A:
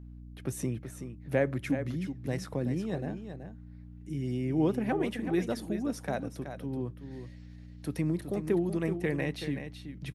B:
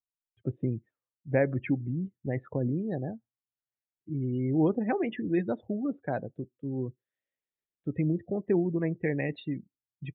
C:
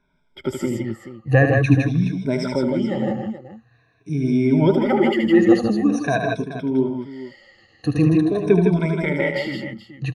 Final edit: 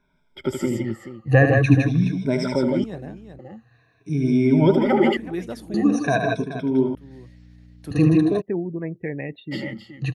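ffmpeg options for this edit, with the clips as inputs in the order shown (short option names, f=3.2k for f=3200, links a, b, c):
-filter_complex "[0:a]asplit=3[a][b][c];[2:a]asplit=5[d][e][f][g][h];[d]atrim=end=2.842[i];[a]atrim=start=2.838:end=3.392[j];[e]atrim=start=3.388:end=5.172[k];[b]atrim=start=5.168:end=5.742[l];[f]atrim=start=5.738:end=6.952[m];[c]atrim=start=6.948:end=7.912[n];[g]atrim=start=7.908:end=8.42[o];[1:a]atrim=start=8.4:end=9.53[p];[h]atrim=start=9.51[q];[i][j]acrossfade=d=0.004:c1=hsin:c2=hsin[r];[r][k]acrossfade=d=0.004:c1=hsin:c2=hsin[s];[s][l]acrossfade=d=0.004:c1=hsin:c2=hsin[t];[t][m]acrossfade=d=0.004:c1=hsin:c2=hsin[u];[u][n]acrossfade=d=0.004:c1=hsin:c2=hsin[v];[v][o]acrossfade=d=0.004:c1=hsin:c2=hsin[w];[w][p]acrossfade=d=0.02:c1=tri:c2=tri[x];[x][q]acrossfade=d=0.02:c1=tri:c2=tri"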